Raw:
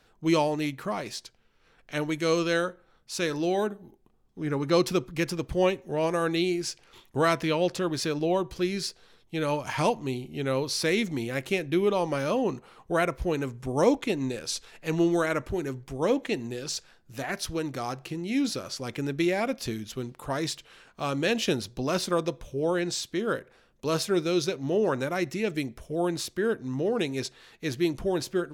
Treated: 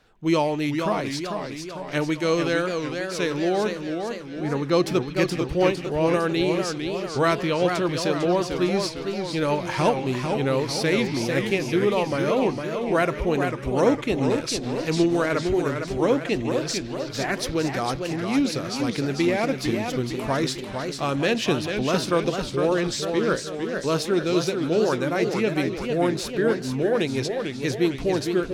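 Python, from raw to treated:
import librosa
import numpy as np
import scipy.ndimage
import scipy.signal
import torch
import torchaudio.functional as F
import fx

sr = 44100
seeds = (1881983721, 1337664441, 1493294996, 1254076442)

p1 = fx.high_shelf(x, sr, hz=5800.0, db=-6.0)
p2 = fx.rider(p1, sr, range_db=4, speed_s=0.5)
p3 = p1 + (p2 * librosa.db_to_amplitude(1.5))
p4 = fx.echo_stepped(p3, sr, ms=156, hz=2500.0, octaves=0.7, feedback_pct=70, wet_db=-12)
p5 = fx.echo_warbled(p4, sr, ms=451, feedback_pct=56, rate_hz=2.8, cents=179, wet_db=-6)
y = p5 * librosa.db_to_amplitude(-3.0)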